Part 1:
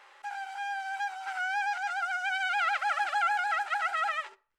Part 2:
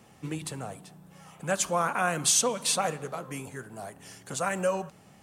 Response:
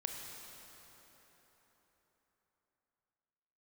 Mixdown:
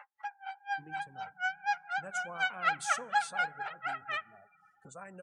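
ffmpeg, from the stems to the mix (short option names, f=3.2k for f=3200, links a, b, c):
-filter_complex "[0:a]aeval=exprs='val(0)*pow(10,-33*(0.5-0.5*cos(2*PI*4.1*n/s))/20)':c=same,volume=2dB,asplit=2[a][b];[b]volume=-17dB[c];[1:a]adelay=550,volume=-18.5dB,asplit=2[d][e];[e]volume=-18.5dB[f];[2:a]atrim=start_sample=2205[g];[c][f]amix=inputs=2:normalize=0[h];[h][g]afir=irnorm=-1:irlink=0[i];[a][d][i]amix=inputs=3:normalize=0,afftdn=nr=33:nf=-52,acompressor=mode=upward:threshold=-48dB:ratio=2.5"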